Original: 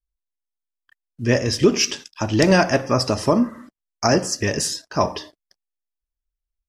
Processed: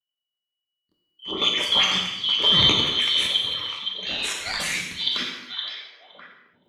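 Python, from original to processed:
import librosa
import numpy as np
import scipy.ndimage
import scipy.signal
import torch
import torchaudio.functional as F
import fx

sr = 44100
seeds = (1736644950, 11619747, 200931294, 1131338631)

y = fx.band_shuffle(x, sr, order='2413')
y = scipy.signal.sosfilt(scipy.signal.butter(2, 74.0, 'highpass', fs=sr, output='sos'), y)
y = fx.peak_eq(y, sr, hz=7100.0, db=-8.0, octaves=2.1)
y = fx.transient(y, sr, attack_db=-10, sustain_db=12)
y = fx.dispersion(y, sr, late='highs', ms=81.0, hz=2400.0, at=(1.31, 1.91))
y = fx.ring_mod(y, sr, carrier_hz=fx.line((4.05, 370.0), (4.62, 1500.0)), at=(4.05, 4.62), fade=0.02)
y = fx.level_steps(y, sr, step_db=10)
y = fx.echo_stepped(y, sr, ms=516, hz=3600.0, octaves=-1.4, feedback_pct=70, wet_db=-6.0)
y = fx.rev_gated(y, sr, seeds[0], gate_ms=320, shape='falling', drr_db=0.5)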